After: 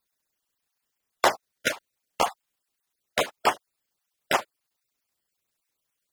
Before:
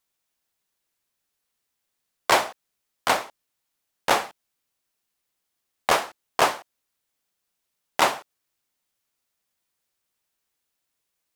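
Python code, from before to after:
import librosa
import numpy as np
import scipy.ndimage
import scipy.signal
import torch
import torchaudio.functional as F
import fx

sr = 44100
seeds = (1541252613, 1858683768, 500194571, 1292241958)

y = fx.spec_dropout(x, sr, seeds[0], share_pct=32)
y = fx.stretch_grains(y, sr, factor=0.54, grain_ms=67.0)
y = y * 10.0 ** (1.5 / 20.0)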